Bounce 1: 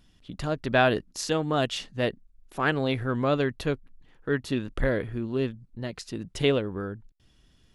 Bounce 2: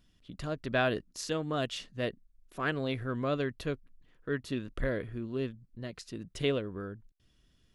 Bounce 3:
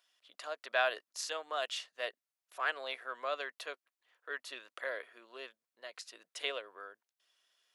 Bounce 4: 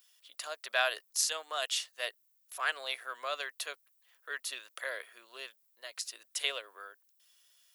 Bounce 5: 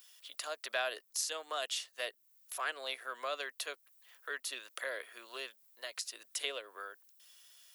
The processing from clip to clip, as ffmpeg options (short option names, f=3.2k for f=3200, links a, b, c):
-af "bandreject=f=840:w=5.1,volume=-6.5dB"
-af "highpass=f=630:w=0.5412,highpass=f=630:w=1.3066"
-af "aemphasis=mode=production:type=riaa"
-filter_complex "[0:a]acrossover=split=410[a][b];[b]acompressor=threshold=-49dB:ratio=2[c];[a][c]amix=inputs=2:normalize=0,volume=6dB"